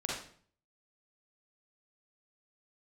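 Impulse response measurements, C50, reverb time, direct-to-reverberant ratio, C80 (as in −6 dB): −0.5 dB, 0.50 s, −4.5 dB, 6.0 dB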